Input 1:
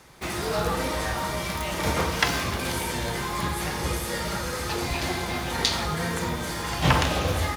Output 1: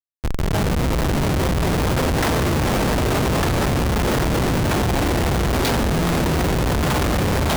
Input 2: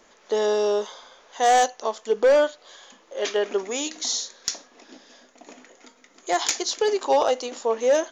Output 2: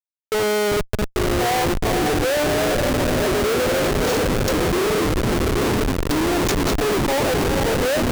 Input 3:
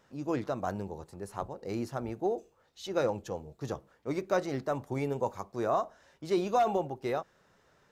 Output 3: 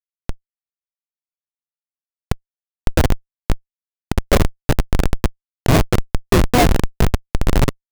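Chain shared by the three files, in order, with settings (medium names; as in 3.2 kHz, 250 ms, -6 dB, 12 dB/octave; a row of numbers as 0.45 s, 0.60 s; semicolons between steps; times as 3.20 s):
echo that smears into a reverb 481 ms, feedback 67%, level -6.5 dB; ever faster or slower copies 782 ms, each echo -3 st, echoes 3; Schmitt trigger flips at -21.5 dBFS; normalise loudness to -20 LUFS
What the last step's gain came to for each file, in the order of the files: +5.0 dB, +1.5 dB, +19.5 dB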